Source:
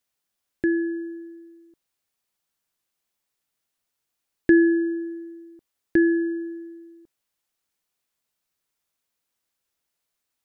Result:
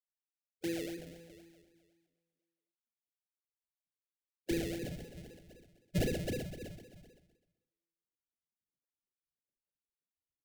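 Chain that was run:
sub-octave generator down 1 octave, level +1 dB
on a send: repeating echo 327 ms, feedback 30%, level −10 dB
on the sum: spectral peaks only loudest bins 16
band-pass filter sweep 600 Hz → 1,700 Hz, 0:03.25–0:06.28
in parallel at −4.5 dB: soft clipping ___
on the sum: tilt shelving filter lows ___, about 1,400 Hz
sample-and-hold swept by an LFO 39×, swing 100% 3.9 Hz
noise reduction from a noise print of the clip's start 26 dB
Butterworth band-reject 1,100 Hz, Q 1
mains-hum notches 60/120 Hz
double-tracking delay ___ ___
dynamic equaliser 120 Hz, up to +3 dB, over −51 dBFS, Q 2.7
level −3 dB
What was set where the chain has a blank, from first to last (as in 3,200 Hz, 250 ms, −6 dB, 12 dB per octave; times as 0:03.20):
−34.5 dBFS, −4.5 dB, 38 ms, −12.5 dB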